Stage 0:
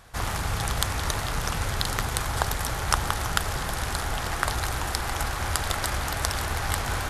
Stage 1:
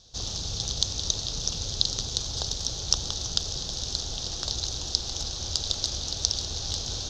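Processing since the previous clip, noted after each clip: EQ curve 500 Hz 0 dB, 1000 Hz -12 dB, 2100 Hz -17 dB, 3700 Hz +13 dB, 6300 Hz +15 dB, 9400 Hz -21 dB; gain -6.5 dB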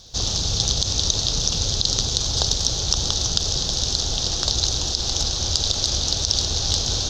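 crackle 330/s -58 dBFS; maximiser +10.5 dB; gain -1 dB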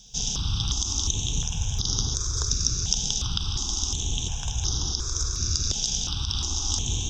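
fixed phaser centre 2900 Hz, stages 8; step phaser 2.8 Hz 320–7800 Hz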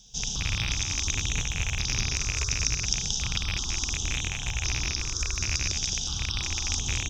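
rattling part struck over -26 dBFS, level -14 dBFS; echo 0.217 s -6 dB; gain -3.5 dB

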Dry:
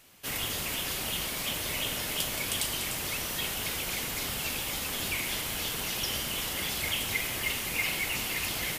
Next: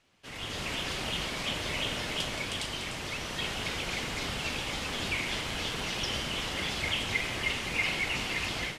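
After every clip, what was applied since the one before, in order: AGC gain up to 10.5 dB; air absorption 96 m; gain -8 dB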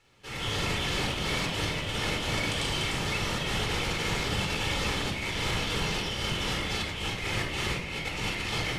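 negative-ratio compressor -35 dBFS, ratio -0.5; reverb, pre-delay 20 ms, DRR 1.5 dB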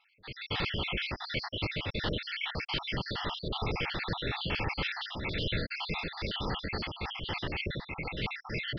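random spectral dropouts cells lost 63%; downsampling 11025 Hz

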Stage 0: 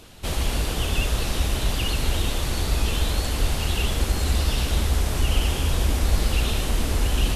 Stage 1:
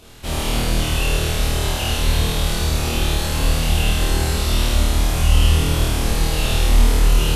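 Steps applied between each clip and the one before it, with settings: flutter echo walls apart 4.4 m, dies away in 1.3 s; gain -1 dB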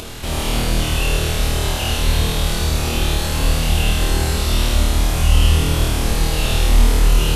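upward compressor, threshold -22 dBFS; gain +1 dB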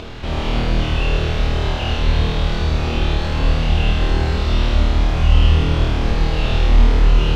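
air absorption 210 m; gain +1 dB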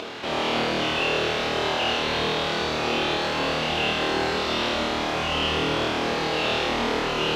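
HPF 330 Hz 12 dB/oct; gain +2 dB

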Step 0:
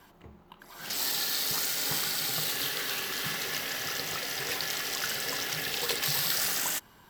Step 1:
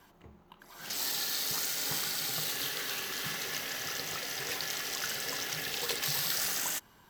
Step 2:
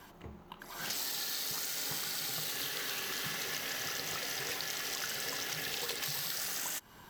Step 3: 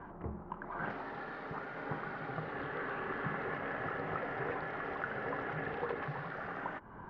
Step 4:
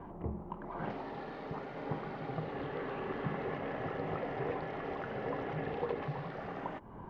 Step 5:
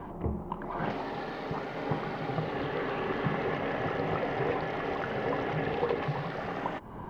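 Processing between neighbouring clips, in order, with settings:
bell 6300 Hz +3.5 dB 0.21 oct; gain -3.5 dB
compressor 5:1, threshold -41 dBFS, peak gain reduction 12.5 dB; gain +6 dB
LPF 1500 Hz 24 dB/oct; gain +7 dB
bell 1500 Hz -12.5 dB 0.84 oct; gain +3.5 dB
high shelf 2600 Hz +7.5 dB; gain +6 dB

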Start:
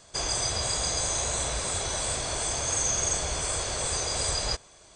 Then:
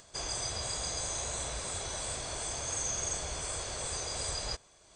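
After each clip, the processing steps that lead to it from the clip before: upward compressor, threshold -44 dBFS; gain -7.5 dB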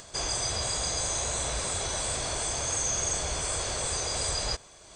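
in parallel at +2 dB: limiter -34 dBFS, peak gain reduction 11.5 dB; on the sum: short-mantissa float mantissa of 6-bit; gain +2 dB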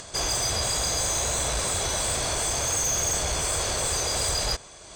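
tube stage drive 26 dB, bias 0.25; gain +6.5 dB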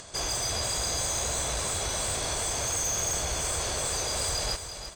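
feedback echo 0.339 s, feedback 26%, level -9.5 dB; gain -4 dB

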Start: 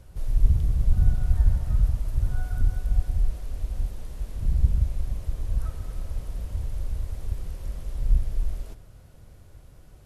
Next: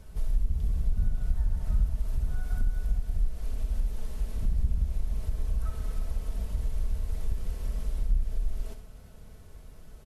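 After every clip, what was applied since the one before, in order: comb 4.6 ms, depth 49%; compressor 3:1, threshold -24 dBFS, peak gain reduction 13 dB; flutter echo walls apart 10.8 m, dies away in 0.37 s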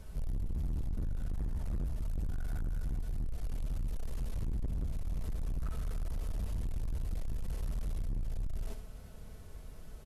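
overloaded stage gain 31.5 dB

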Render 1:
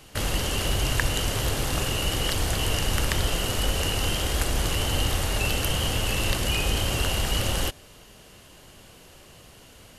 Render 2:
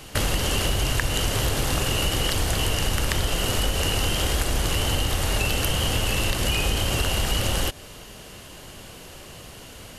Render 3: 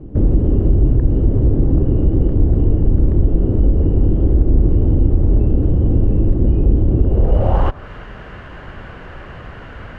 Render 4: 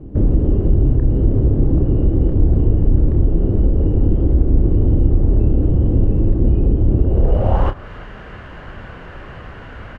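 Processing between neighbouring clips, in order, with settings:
compressor, threshold -27 dBFS, peak gain reduction 9 dB; gain +7.5 dB
one-sided clip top -17.5 dBFS; low-pass sweep 320 Hz -> 1600 Hz, 7.04–7.89; low shelf 110 Hz +9 dB; gain +6 dB
doubler 30 ms -9.5 dB; gain -1 dB

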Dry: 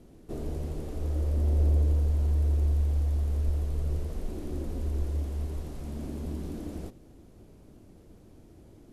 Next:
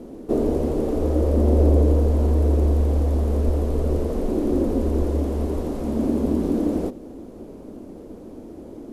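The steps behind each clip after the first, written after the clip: graphic EQ 125/250/500/1000 Hz -5/+11/+10/+6 dB; gain +6.5 dB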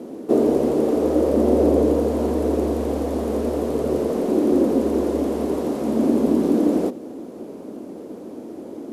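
HPF 200 Hz 12 dB/oct; gain +5 dB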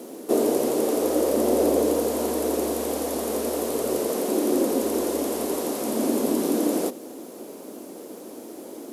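RIAA curve recording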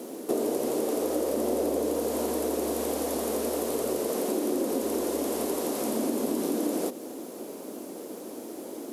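compressor 3:1, threshold -26 dBFS, peak gain reduction 7.5 dB

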